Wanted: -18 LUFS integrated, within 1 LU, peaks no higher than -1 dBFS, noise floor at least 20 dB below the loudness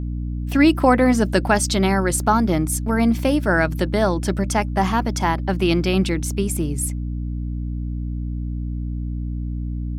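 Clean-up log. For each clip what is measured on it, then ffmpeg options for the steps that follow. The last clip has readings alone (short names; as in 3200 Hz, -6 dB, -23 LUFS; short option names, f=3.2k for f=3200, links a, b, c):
hum 60 Hz; harmonics up to 300 Hz; hum level -23 dBFS; loudness -21.0 LUFS; peak -3.5 dBFS; loudness target -18.0 LUFS
-> -af "bandreject=f=60:t=h:w=4,bandreject=f=120:t=h:w=4,bandreject=f=180:t=h:w=4,bandreject=f=240:t=h:w=4,bandreject=f=300:t=h:w=4"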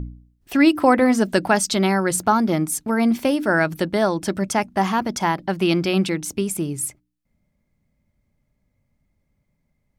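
hum none; loudness -20.5 LUFS; peak -4.0 dBFS; loudness target -18.0 LUFS
-> -af "volume=2.5dB"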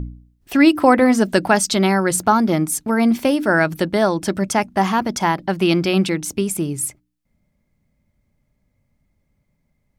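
loudness -18.0 LUFS; peak -1.5 dBFS; noise floor -70 dBFS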